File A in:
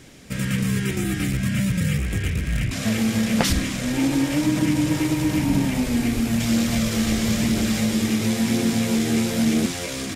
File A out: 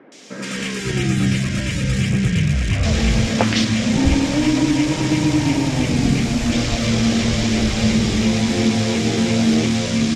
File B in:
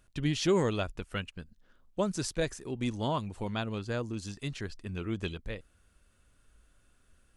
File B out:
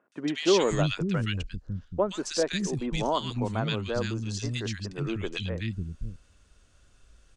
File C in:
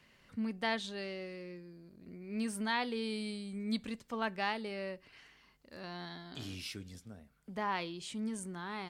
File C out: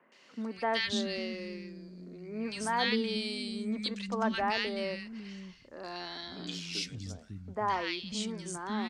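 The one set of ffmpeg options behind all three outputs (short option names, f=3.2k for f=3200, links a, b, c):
-filter_complex "[0:a]lowpass=f=6.3k:t=q:w=1.6,acrossover=split=240|1600[a][b][c];[c]adelay=120[d];[a]adelay=550[e];[e][b][d]amix=inputs=3:normalize=0,acrossover=split=4000[f][g];[g]acompressor=threshold=-37dB:ratio=4:attack=1:release=60[h];[f][h]amix=inputs=2:normalize=0,volume=6dB"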